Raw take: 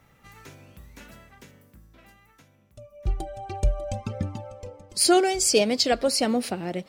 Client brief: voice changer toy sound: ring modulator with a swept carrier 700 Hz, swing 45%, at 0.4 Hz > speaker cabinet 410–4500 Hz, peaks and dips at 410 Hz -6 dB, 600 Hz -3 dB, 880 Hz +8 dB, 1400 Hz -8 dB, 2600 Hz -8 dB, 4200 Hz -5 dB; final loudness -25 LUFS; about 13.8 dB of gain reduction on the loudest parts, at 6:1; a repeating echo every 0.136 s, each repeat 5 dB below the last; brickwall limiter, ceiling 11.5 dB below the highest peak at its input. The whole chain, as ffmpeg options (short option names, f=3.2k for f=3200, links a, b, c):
-af "acompressor=threshold=-30dB:ratio=6,alimiter=level_in=6dB:limit=-24dB:level=0:latency=1,volume=-6dB,aecho=1:1:136|272|408|544|680|816|952:0.562|0.315|0.176|0.0988|0.0553|0.031|0.0173,aeval=exprs='val(0)*sin(2*PI*700*n/s+700*0.45/0.4*sin(2*PI*0.4*n/s))':c=same,highpass=410,equalizer=f=410:t=q:w=4:g=-6,equalizer=f=600:t=q:w=4:g=-3,equalizer=f=880:t=q:w=4:g=8,equalizer=f=1.4k:t=q:w=4:g=-8,equalizer=f=2.6k:t=q:w=4:g=-8,equalizer=f=4.2k:t=q:w=4:g=-5,lowpass=f=4.5k:w=0.5412,lowpass=f=4.5k:w=1.3066,volume=19dB"